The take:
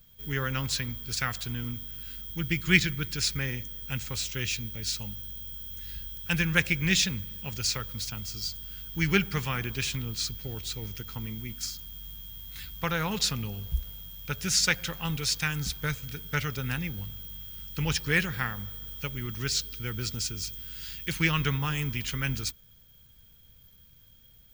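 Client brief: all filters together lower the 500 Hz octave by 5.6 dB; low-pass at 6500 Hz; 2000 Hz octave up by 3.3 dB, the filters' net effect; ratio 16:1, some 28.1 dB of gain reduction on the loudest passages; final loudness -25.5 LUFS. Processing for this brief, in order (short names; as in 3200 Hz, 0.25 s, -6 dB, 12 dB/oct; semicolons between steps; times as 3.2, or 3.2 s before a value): LPF 6500 Hz; bell 500 Hz -7.5 dB; bell 2000 Hz +4.5 dB; compressor 16:1, threshold -42 dBFS; gain +20.5 dB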